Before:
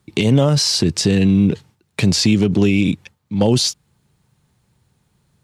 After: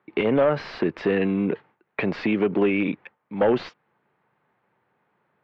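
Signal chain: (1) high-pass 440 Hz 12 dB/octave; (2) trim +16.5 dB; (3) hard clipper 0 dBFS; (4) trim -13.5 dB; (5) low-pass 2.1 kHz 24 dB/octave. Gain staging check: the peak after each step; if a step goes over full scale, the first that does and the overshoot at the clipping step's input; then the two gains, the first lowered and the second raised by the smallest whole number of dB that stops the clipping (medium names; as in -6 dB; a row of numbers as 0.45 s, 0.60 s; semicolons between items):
-7.0 dBFS, +9.5 dBFS, 0.0 dBFS, -13.5 dBFS, -12.0 dBFS; step 2, 9.5 dB; step 2 +6.5 dB, step 4 -3.5 dB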